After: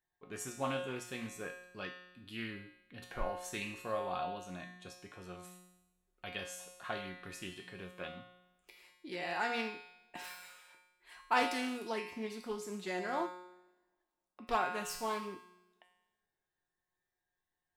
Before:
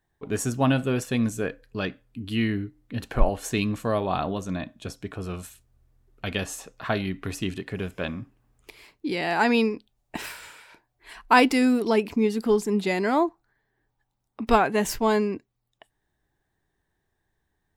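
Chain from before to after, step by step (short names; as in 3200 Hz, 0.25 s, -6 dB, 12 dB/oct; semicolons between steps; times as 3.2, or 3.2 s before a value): low shelf 320 Hz -8.5 dB; notches 60/120/180/240/300/360/420 Hz; resonator 180 Hz, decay 0.87 s, harmonics all, mix 90%; two-slope reverb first 0.31 s, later 2.1 s, from -20 dB, DRR 18 dB; Doppler distortion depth 0.16 ms; gain +4.5 dB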